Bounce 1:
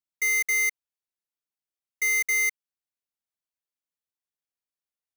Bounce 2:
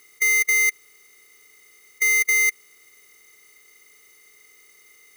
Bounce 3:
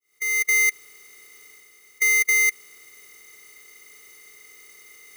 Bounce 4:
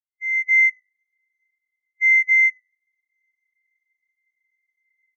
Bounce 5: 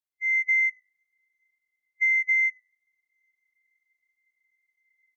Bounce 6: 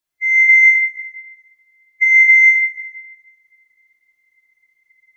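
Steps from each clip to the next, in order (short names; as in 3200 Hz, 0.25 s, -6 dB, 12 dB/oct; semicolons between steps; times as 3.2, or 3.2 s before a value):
per-bin compression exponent 0.4; gain +4.5 dB
opening faded in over 0.54 s; reverse; upward compressor, threshold -41 dBFS; reverse
per-bin compression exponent 0.4; on a send: frequency-shifting echo 99 ms, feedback 54%, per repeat -51 Hz, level -10.5 dB; on the sum: spectral expander 4:1
compressor, threshold -21 dBFS, peak gain reduction 8 dB
shoebox room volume 2000 m³, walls mixed, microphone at 3 m; gain +8 dB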